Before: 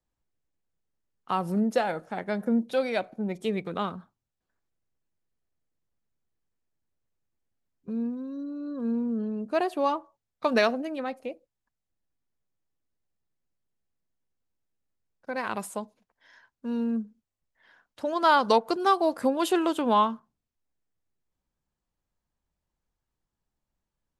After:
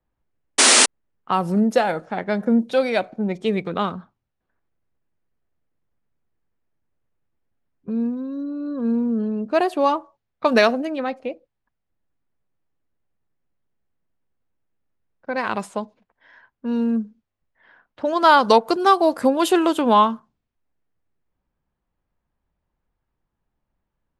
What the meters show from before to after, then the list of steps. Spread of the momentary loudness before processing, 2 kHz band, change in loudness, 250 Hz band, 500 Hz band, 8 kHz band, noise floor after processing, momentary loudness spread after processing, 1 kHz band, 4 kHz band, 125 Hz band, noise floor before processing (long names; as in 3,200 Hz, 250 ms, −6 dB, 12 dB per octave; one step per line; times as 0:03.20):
13 LU, +9.0 dB, +8.0 dB, +7.0 dB, +7.0 dB, +24.5 dB, −79 dBFS, 14 LU, +7.0 dB, +13.0 dB, can't be measured, below −85 dBFS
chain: low-pass that shuts in the quiet parts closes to 2,300 Hz, open at −22.5 dBFS
sound drawn into the spectrogram noise, 0:00.58–0:00.86, 220–10,000 Hz −20 dBFS
level +7 dB